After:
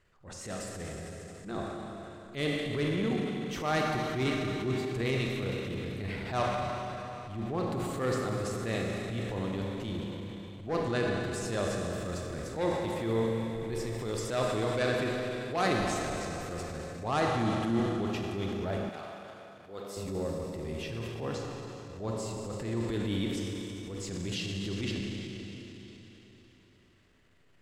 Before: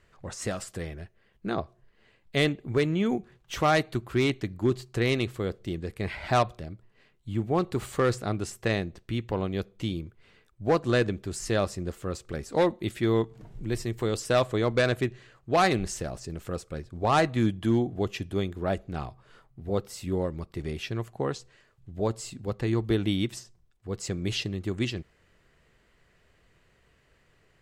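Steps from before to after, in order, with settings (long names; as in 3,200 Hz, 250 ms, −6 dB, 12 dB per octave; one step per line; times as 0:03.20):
four-comb reverb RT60 3.9 s, combs from 31 ms, DRR 0.5 dB
transient designer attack −9 dB, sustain +4 dB
0:18.89–0:19.97: high-pass filter 720 Hz 6 dB per octave
level −6 dB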